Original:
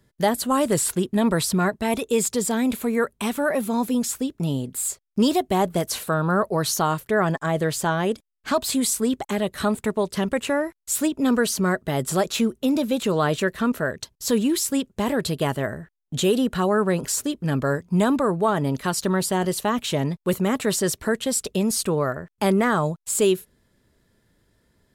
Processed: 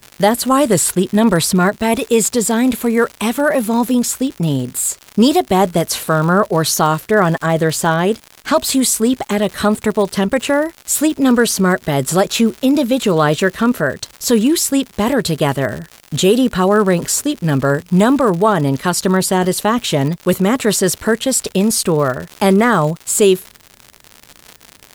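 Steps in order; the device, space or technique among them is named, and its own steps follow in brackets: vinyl LP (crackle 130/s -30 dBFS; white noise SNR 44 dB); gain +8 dB

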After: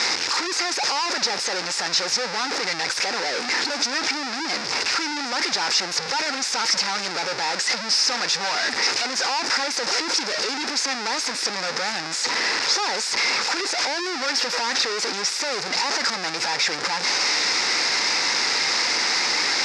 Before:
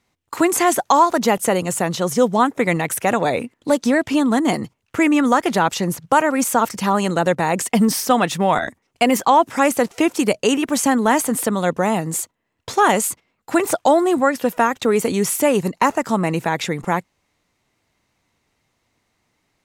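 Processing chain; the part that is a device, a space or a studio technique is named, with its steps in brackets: home computer beeper (infinite clipping; speaker cabinet 630–5900 Hz, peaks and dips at 650 Hz -10 dB, 1100 Hz -6 dB, 3100 Hz -9 dB, 5100 Hz +10 dB)

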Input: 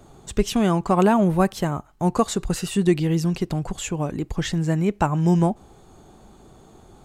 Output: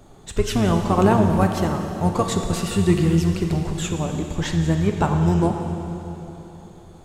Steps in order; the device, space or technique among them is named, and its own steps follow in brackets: octave pedal (harmoniser -12 st -6 dB); plate-style reverb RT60 3.4 s, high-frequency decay 0.95×, DRR 3.5 dB; gain -1 dB

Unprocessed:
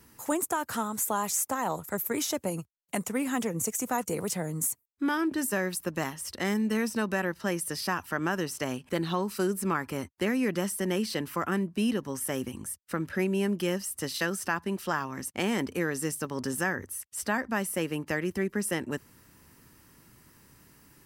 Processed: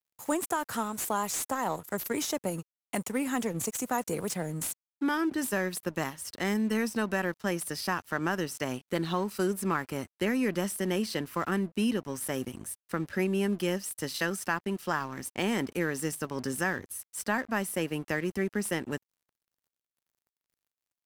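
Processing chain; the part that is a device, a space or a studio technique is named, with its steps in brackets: early transistor amplifier (crossover distortion -48.5 dBFS; slew limiter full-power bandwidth 250 Hz)

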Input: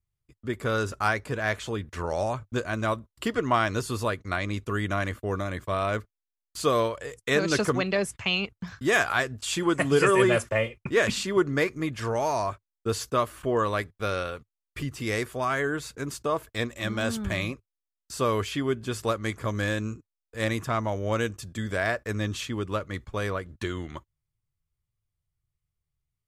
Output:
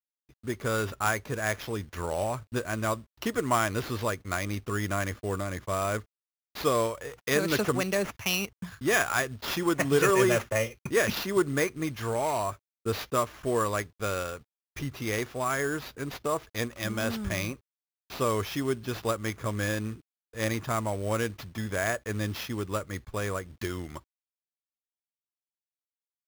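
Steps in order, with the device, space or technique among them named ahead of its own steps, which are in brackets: early companding sampler (sample-rate reducer 8500 Hz, jitter 0%; companded quantiser 6-bit); gain -2 dB

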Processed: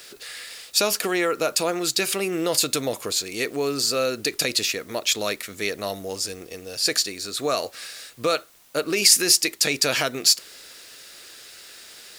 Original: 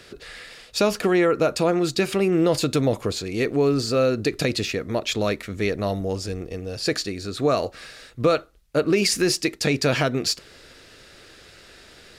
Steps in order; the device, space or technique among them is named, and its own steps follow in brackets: turntable without a phono preamp (RIAA curve recording; white noise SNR 30 dB); gain -1.5 dB

